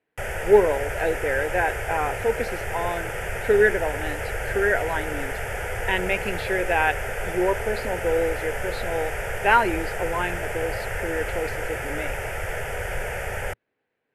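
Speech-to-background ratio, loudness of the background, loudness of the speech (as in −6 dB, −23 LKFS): 5.0 dB, −30.0 LKFS, −25.0 LKFS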